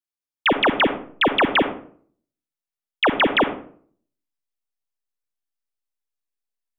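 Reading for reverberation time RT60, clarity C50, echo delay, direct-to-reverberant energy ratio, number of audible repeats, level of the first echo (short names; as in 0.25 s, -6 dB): 0.50 s, 10.5 dB, none, 9.0 dB, none, none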